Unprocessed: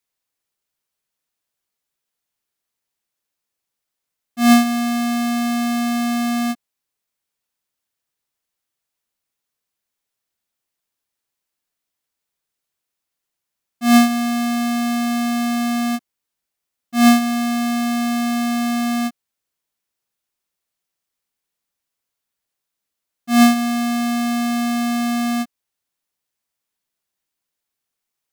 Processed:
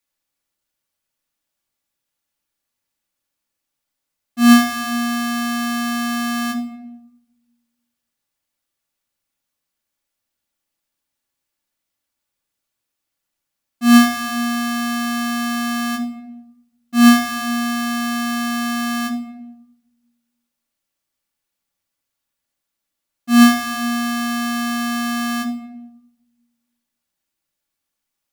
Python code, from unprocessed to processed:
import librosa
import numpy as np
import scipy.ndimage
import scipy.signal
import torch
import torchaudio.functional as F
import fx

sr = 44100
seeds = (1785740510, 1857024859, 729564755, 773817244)

y = fx.room_shoebox(x, sr, seeds[0], volume_m3=3100.0, walls='furnished', distance_m=2.4)